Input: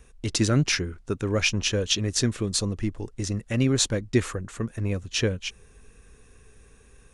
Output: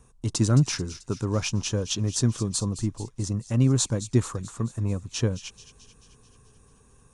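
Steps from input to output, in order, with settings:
octave-band graphic EQ 125/250/1,000/2,000/8,000 Hz +11/+5/+12/−7/+8 dB
delay with a high-pass on its return 218 ms, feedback 59%, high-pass 2,800 Hz, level −12 dB
level −7.5 dB

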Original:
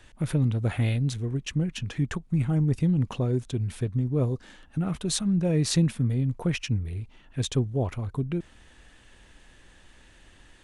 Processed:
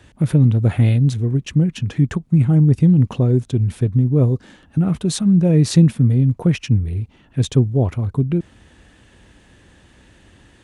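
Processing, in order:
high-pass filter 73 Hz
low-shelf EQ 490 Hz +9.5 dB
level +2.5 dB

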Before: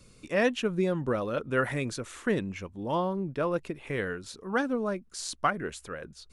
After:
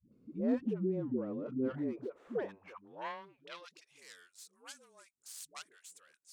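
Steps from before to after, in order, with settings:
stylus tracing distortion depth 0.45 ms
band-pass filter sweep 260 Hz → 8,000 Hz, 0:01.72–0:03.93
all-pass dispersion highs, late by 120 ms, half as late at 360 Hz

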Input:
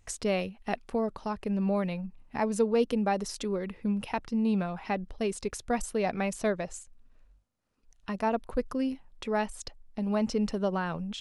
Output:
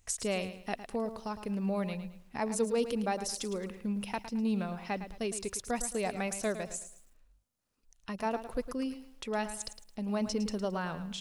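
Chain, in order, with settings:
high-shelf EQ 4,500 Hz +11 dB
feedback echo at a low word length 109 ms, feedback 35%, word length 9 bits, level −11 dB
level −5 dB

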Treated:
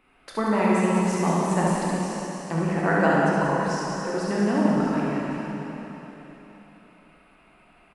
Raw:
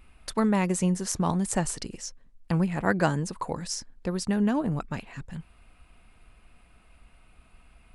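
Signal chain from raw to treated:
three-way crossover with the lows and the highs turned down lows −22 dB, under 180 Hz, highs −12 dB, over 3,000 Hz
on a send: reverse bouncing-ball delay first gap 70 ms, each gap 1.6×, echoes 5
on the sum: dense smooth reverb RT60 3.4 s, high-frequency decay 0.95×, DRR −4 dB

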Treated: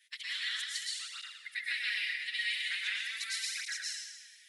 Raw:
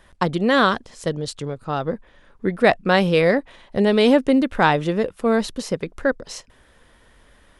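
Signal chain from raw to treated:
elliptic high-pass filter 2,000 Hz, stop band 60 dB
downward compressor 12 to 1, threshold −30 dBFS, peak gain reduction 12 dB
phase-vocoder stretch with locked phases 0.59×
dense smooth reverb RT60 1.2 s, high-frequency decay 1×, pre-delay 100 ms, DRR −6.5 dB
through-zero flanger with one copy inverted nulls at 0.41 Hz, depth 8 ms

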